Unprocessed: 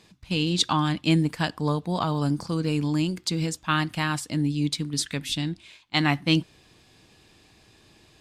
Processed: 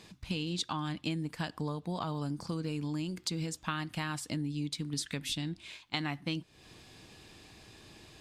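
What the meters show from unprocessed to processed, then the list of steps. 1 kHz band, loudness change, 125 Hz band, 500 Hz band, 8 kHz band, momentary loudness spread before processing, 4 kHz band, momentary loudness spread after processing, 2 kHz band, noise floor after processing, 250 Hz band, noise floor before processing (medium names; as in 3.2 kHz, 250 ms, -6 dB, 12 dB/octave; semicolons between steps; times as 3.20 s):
-11.0 dB, -10.5 dB, -10.5 dB, -10.5 dB, -8.5 dB, 6 LU, -10.0 dB, 18 LU, -11.0 dB, -62 dBFS, -11.0 dB, -58 dBFS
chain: compression 6:1, threshold -35 dBFS, peak gain reduction 18 dB; trim +2 dB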